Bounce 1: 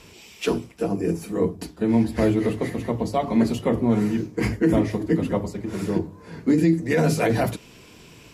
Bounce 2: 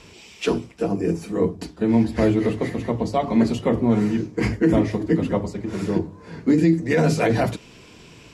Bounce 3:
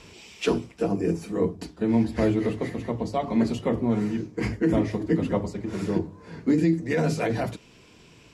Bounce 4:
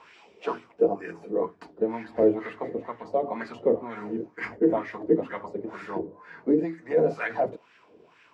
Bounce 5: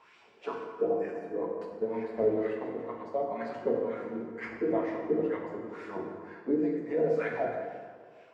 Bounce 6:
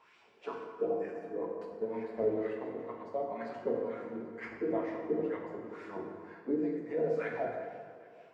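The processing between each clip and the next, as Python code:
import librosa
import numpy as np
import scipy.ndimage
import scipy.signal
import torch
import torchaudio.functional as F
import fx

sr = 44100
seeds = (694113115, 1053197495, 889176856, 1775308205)

y1 = scipy.signal.sosfilt(scipy.signal.butter(2, 8100.0, 'lowpass', fs=sr, output='sos'), x)
y1 = y1 * librosa.db_to_amplitude(1.5)
y2 = fx.rider(y1, sr, range_db=10, speed_s=2.0)
y2 = y2 * librosa.db_to_amplitude(-5.0)
y3 = fx.filter_lfo_bandpass(y2, sr, shape='sine', hz=2.1, low_hz=430.0, high_hz=1700.0, q=2.9)
y3 = y3 * librosa.db_to_amplitude(7.5)
y4 = fx.rev_plate(y3, sr, seeds[0], rt60_s=1.8, hf_ratio=0.65, predelay_ms=0, drr_db=0.0)
y4 = y4 * librosa.db_to_amplitude(-8.0)
y5 = fx.echo_feedback(y4, sr, ms=396, feedback_pct=46, wet_db=-20)
y5 = y5 * librosa.db_to_amplitude(-4.0)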